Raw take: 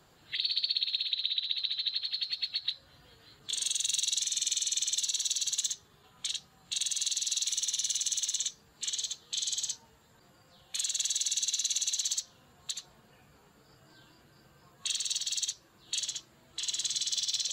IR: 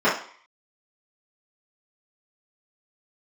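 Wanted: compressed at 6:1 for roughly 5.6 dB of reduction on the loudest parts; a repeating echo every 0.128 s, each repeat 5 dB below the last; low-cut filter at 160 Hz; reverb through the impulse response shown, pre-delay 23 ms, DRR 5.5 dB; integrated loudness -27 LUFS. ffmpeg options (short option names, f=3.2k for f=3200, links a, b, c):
-filter_complex "[0:a]highpass=160,acompressor=threshold=-32dB:ratio=6,aecho=1:1:128|256|384|512|640|768|896:0.562|0.315|0.176|0.0988|0.0553|0.031|0.0173,asplit=2[a][b];[1:a]atrim=start_sample=2205,adelay=23[c];[b][c]afir=irnorm=-1:irlink=0,volume=-25.5dB[d];[a][d]amix=inputs=2:normalize=0,volume=6.5dB"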